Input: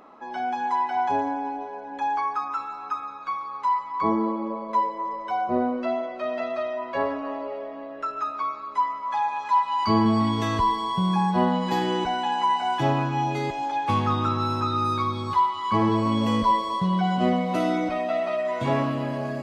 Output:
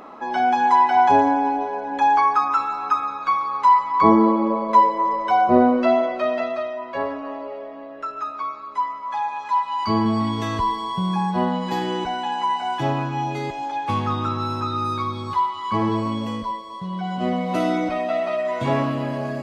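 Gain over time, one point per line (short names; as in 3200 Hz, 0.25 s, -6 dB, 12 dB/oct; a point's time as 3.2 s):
6.1 s +9 dB
6.74 s 0 dB
15.98 s 0 dB
16.64 s -9.5 dB
17.57 s +2.5 dB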